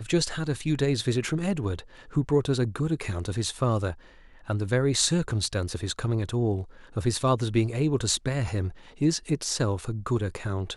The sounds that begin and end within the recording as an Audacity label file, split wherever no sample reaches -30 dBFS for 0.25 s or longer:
2.160000	3.920000	sound
4.500000	6.620000	sound
6.970000	8.690000	sound